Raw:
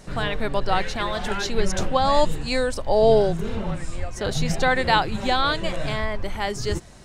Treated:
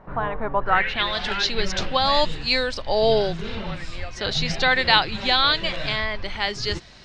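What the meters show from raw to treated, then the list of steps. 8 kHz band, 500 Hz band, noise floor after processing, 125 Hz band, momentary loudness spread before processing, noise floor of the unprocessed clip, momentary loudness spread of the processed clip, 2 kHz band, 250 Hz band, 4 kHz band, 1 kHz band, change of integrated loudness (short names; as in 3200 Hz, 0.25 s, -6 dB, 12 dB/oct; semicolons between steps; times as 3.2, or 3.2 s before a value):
-4.0 dB, -2.5 dB, -38 dBFS, -4.0 dB, 10 LU, -35 dBFS, 11 LU, +4.0 dB, -3.5 dB, +7.5 dB, 0.0 dB, +1.5 dB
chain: low-pass sweep 1000 Hz -> 4600 Hz, 0.58–1.09; bell 2400 Hz +8 dB 2.1 oct; gain -4 dB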